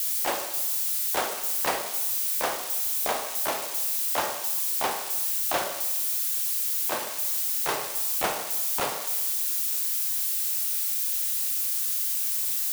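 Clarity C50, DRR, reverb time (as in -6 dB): 7.5 dB, 5.5 dB, 1.1 s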